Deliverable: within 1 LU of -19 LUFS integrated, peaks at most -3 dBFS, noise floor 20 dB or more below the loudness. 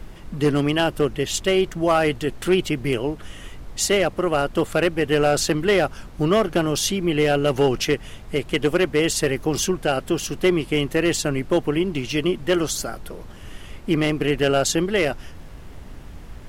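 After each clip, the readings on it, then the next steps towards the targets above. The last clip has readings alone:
clipped 0.4%; flat tops at -10.5 dBFS; noise floor -40 dBFS; noise floor target -42 dBFS; loudness -21.5 LUFS; peak -10.5 dBFS; loudness target -19.0 LUFS
-> clip repair -10.5 dBFS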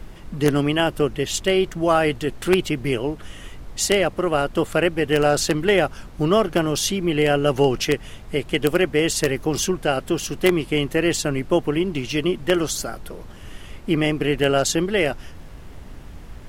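clipped 0.0%; noise floor -40 dBFS; noise floor target -41 dBFS
-> noise print and reduce 6 dB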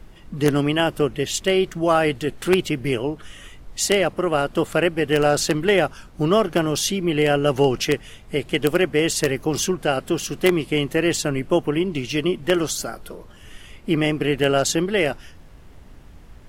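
noise floor -45 dBFS; loudness -21.0 LUFS; peak -1.5 dBFS; loudness target -19.0 LUFS
-> gain +2 dB; limiter -3 dBFS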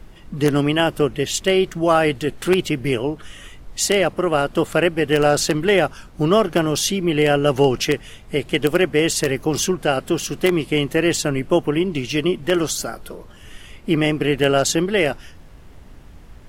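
loudness -19.5 LUFS; peak -3.0 dBFS; noise floor -43 dBFS

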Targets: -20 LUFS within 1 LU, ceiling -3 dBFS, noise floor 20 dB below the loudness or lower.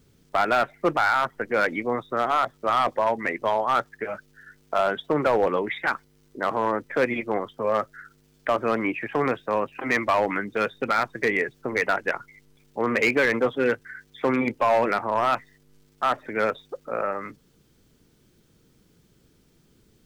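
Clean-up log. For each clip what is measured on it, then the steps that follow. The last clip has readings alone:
clipped 0.9%; flat tops at -14.5 dBFS; loudness -25.0 LUFS; peak -14.5 dBFS; loudness target -20.0 LUFS
-> clip repair -14.5 dBFS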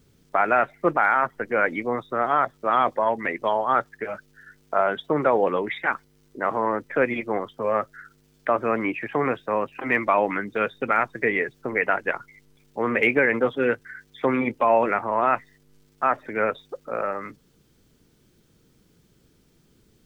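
clipped 0.0%; loudness -24.0 LUFS; peak -7.5 dBFS; loudness target -20.0 LUFS
-> gain +4 dB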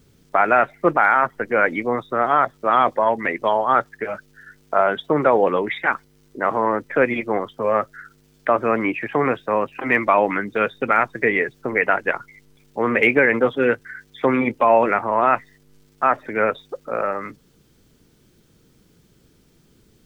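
loudness -20.0 LUFS; peak -3.5 dBFS; noise floor -57 dBFS

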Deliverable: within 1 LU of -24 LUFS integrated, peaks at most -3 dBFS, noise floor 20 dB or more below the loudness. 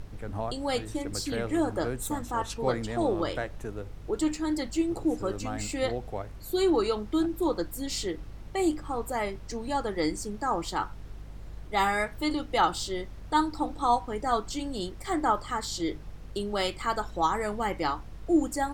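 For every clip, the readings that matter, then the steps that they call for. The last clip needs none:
hum 50 Hz; harmonics up to 150 Hz; hum level -42 dBFS; noise floor -44 dBFS; noise floor target -50 dBFS; loudness -30.0 LUFS; peak -10.5 dBFS; loudness target -24.0 LUFS
-> de-hum 50 Hz, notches 3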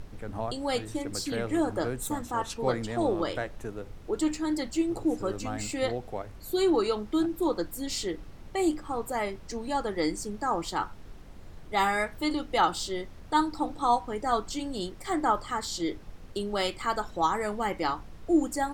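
hum none; noise floor -46 dBFS; noise floor target -50 dBFS
-> noise print and reduce 6 dB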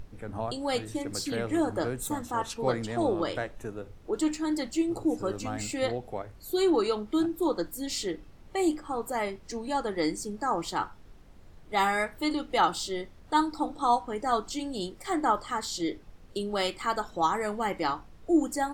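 noise floor -51 dBFS; loudness -30.0 LUFS; peak -10.5 dBFS; loudness target -24.0 LUFS
-> gain +6 dB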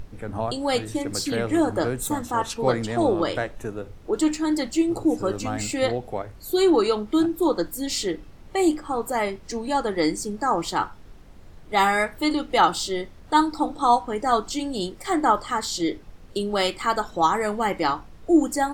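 loudness -24.0 LUFS; peak -4.5 dBFS; noise floor -45 dBFS

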